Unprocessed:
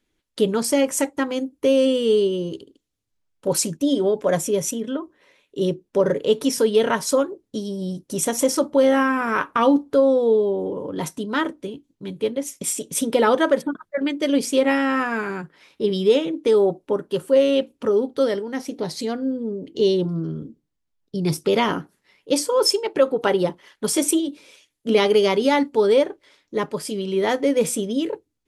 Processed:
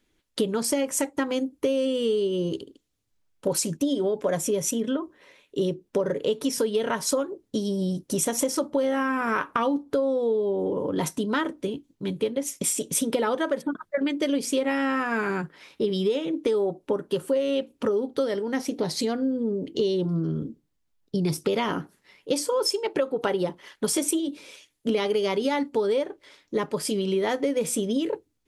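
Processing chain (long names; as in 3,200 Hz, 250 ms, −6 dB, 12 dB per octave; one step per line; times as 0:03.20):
downward compressor, threshold −25 dBFS, peak gain reduction 13.5 dB
level +3 dB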